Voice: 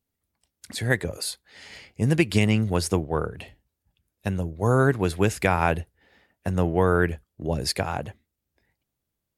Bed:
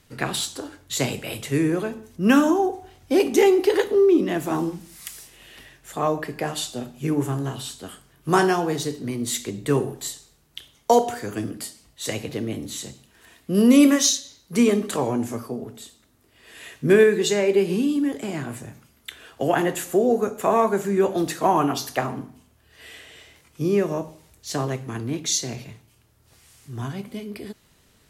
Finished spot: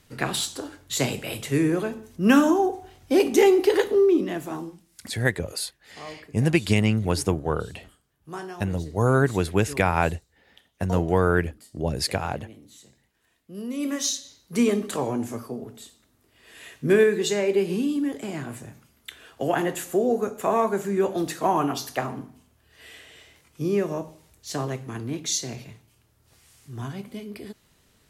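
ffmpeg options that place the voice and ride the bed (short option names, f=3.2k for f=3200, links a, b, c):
-filter_complex "[0:a]adelay=4350,volume=0dB[a];[1:a]volume=14dB,afade=t=out:st=3.88:d=0.97:silence=0.141254,afade=t=in:st=13.77:d=0.52:silence=0.188365[b];[a][b]amix=inputs=2:normalize=0"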